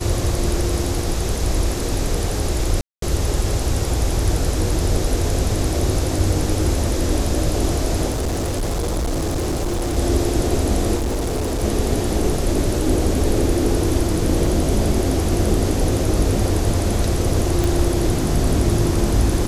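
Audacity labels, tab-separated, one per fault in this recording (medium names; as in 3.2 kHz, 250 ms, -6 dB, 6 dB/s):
2.810000	3.020000	dropout 213 ms
8.100000	9.980000	clipped -18.5 dBFS
10.960000	11.640000	clipped -18.5 dBFS
14.460000	14.460000	dropout 3.2 ms
17.640000	17.640000	pop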